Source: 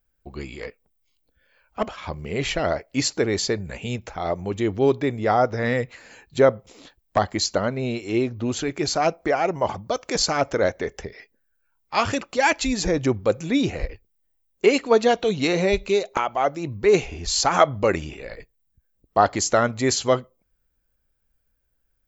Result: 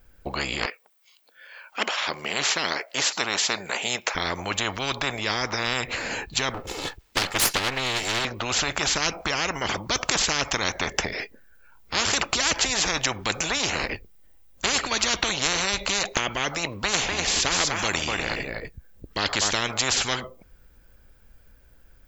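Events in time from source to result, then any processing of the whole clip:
0.66–4.15 HPF 830 Hz
6.54–8.25 minimum comb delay 2.3 ms
16.78–19.54 echo 0.247 s -11.5 dB
whole clip: high shelf 5800 Hz -7 dB; spectral compressor 10:1

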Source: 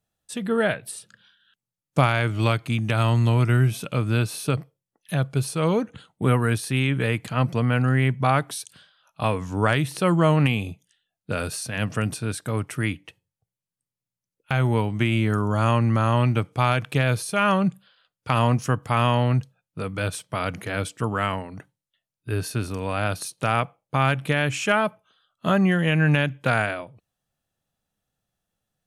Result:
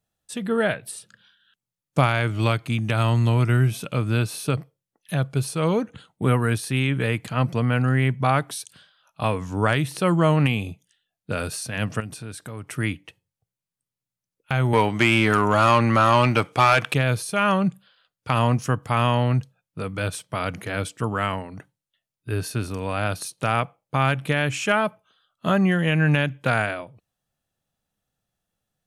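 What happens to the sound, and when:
12–12.69 compressor 2.5:1, threshold -35 dBFS
14.73–16.94 overdrive pedal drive 18 dB, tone 5800 Hz, clips at -5.5 dBFS

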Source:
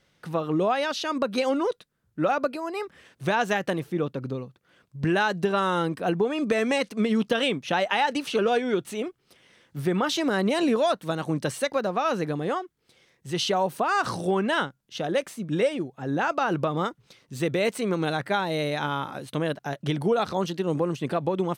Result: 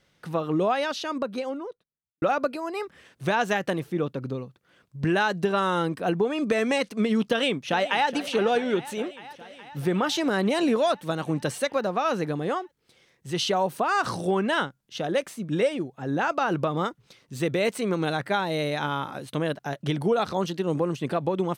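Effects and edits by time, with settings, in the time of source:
0.7–2.22 studio fade out
7.25–8.09 echo throw 0.42 s, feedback 75%, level -15 dB

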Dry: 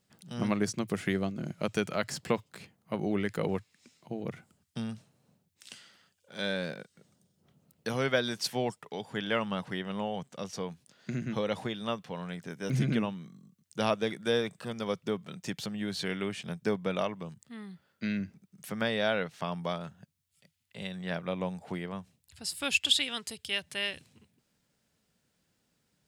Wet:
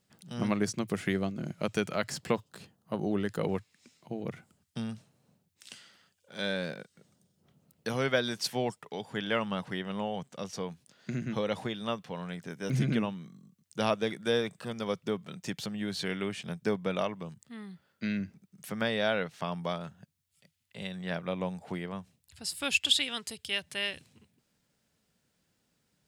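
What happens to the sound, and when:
2.34–3.4 bell 2200 Hz -13 dB 0.27 oct

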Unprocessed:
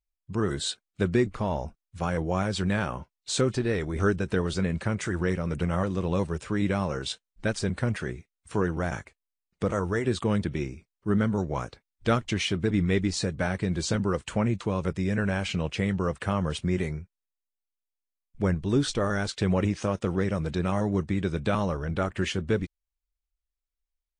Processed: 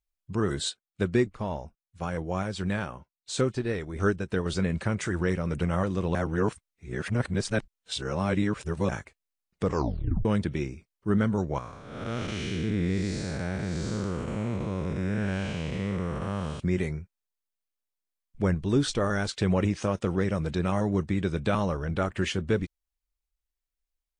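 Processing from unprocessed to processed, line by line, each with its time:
0.69–4.46 upward expander, over -45 dBFS
6.15–8.89 reverse
9.64 tape stop 0.61 s
11.58–16.6 time blur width 0.332 s

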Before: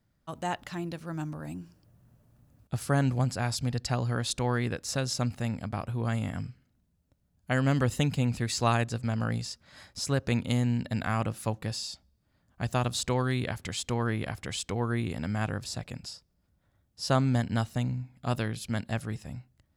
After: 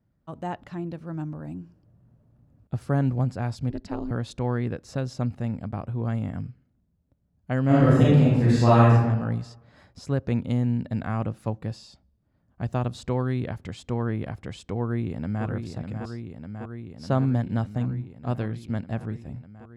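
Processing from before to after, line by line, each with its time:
3.7–4.11 ring modulator 140 Hz
7.66–8.92 reverb throw, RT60 1.1 s, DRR -8.5 dB
14.8–15.45 echo throw 0.6 s, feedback 80%, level -6.5 dB
whole clip: HPF 340 Hz 6 dB/oct; tilt -4.5 dB/oct; gain -1.5 dB

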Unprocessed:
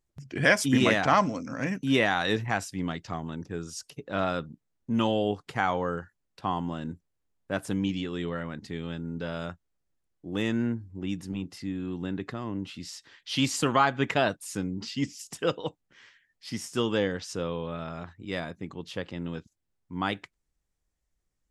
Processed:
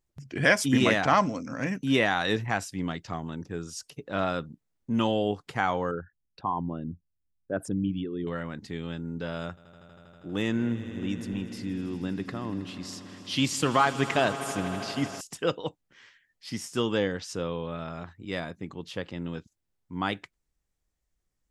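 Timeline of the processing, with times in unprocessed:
5.91–8.27 formant sharpening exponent 2
9.41–15.21 swelling echo 80 ms, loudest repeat 5, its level -18 dB

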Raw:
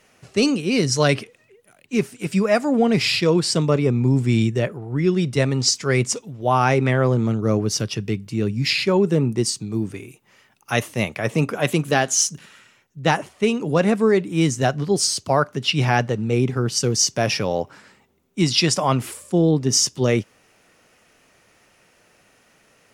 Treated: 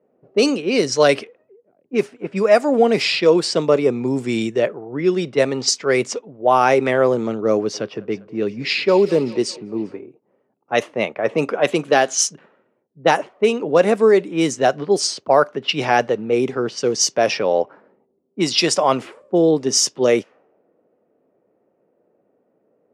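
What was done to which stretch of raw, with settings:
7.54–10 thinning echo 0.199 s, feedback 69%, high-pass 370 Hz, level -19 dB
whole clip: low-pass opened by the level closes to 370 Hz, open at -13.5 dBFS; HPF 280 Hz 12 dB/oct; bell 530 Hz +5.5 dB 1.2 oct; gain +1.5 dB

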